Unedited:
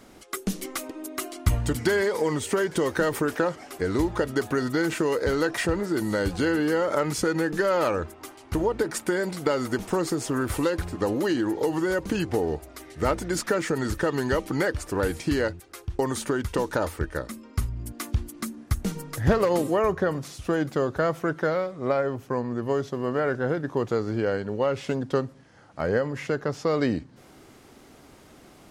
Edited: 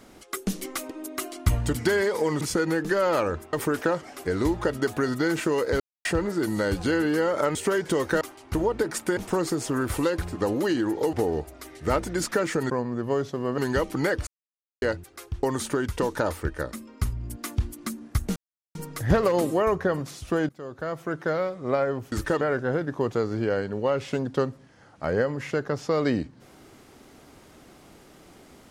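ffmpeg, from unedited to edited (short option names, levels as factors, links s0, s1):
-filter_complex "[0:a]asplit=17[s0][s1][s2][s3][s4][s5][s6][s7][s8][s9][s10][s11][s12][s13][s14][s15][s16];[s0]atrim=end=2.412[s17];[s1]atrim=start=7.088:end=8.212[s18];[s2]atrim=start=3.068:end=5.34,asetpts=PTS-STARTPTS,afade=t=out:st=2.268:d=0.004:c=hsin[s19];[s3]atrim=start=5.34:end=5.59,asetpts=PTS-STARTPTS,volume=0[s20];[s4]atrim=start=5.59:end=7.092,asetpts=PTS-STARTPTS,afade=t=in:d=0.004:c=hsin[s21];[s5]atrim=start=2.408:end=3.072[s22];[s6]atrim=start=8.208:end=9.172[s23];[s7]atrim=start=9.768:end=11.732[s24];[s8]atrim=start=12.278:end=13.852[s25];[s9]atrim=start=22.288:end=23.172[s26];[s10]atrim=start=14.138:end=14.83,asetpts=PTS-STARTPTS,afade=t=out:st=0.688:d=0.004:c=hsin[s27];[s11]atrim=start=14.83:end=15.38,asetpts=PTS-STARTPTS,volume=0[s28];[s12]atrim=start=15.38:end=18.92,asetpts=PTS-STARTPTS,afade=t=in:d=0.004:c=hsin,afade=t=out:st=3.536:d=0.004:c=hsin,apad=pad_dur=0.39[s29];[s13]atrim=start=18.92:end=20.66,asetpts=PTS-STARTPTS,afade=t=in:d=0.004:c=hsin,afade=t=out:st=1.736:d=0.004:c=hsin:silence=0.0794328[s30];[s14]atrim=start=20.66:end=22.292,asetpts=PTS-STARTPTS,afade=t=in:d=0.98:silence=0.0794328[s31];[s15]atrim=start=13.848:end=14.142[s32];[s16]atrim=start=23.168[s33];[s17][s18]acrossfade=d=0.004:c1=hsin:c2=hsin[s34];[s19][s20][s21]concat=n=3:v=0:a=1[s35];[s34][s35]acrossfade=d=0.004:c1=hsin:c2=hsin[s36];[s36][s22]acrossfade=d=0.004:c1=hsin:c2=hsin[s37];[s37][s23]acrossfade=d=0.004:c1=hsin:c2=hsin[s38];[s38][s24]acrossfade=d=0.004:c1=hsin:c2=hsin[s39];[s39][s25]acrossfade=d=0.004:c1=hsin:c2=hsin[s40];[s40][s26]acrossfade=d=0.004:c1=hsin:c2=hsin[s41];[s27][s28][s29][s30][s31]concat=n=5:v=0:a=1[s42];[s41][s42]acrossfade=d=0.004:c1=hsin:c2=hsin[s43];[s43][s32]acrossfade=d=0.004:c1=hsin:c2=hsin[s44];[s44][s33]acrossfade=d=0.004:c1=hsin:c2=hsin"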